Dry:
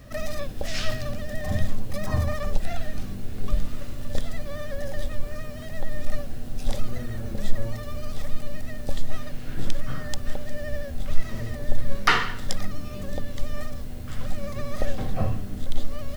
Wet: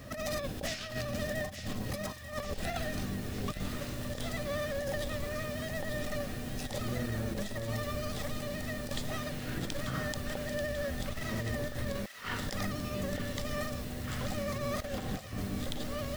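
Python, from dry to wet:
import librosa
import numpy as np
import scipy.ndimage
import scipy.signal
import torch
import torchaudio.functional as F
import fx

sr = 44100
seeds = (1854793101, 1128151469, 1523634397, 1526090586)

y = fx.highpass(x, sr, hz=120.0, slope=6)
y = fx.over_compress(y, sr, threshold_db=-35.0, ratio=-0.5)
y = fx.echo_wet_highpass(y, sr, ms=888, feedback_pct=67, hz=1600.0, wet_db=-8.0)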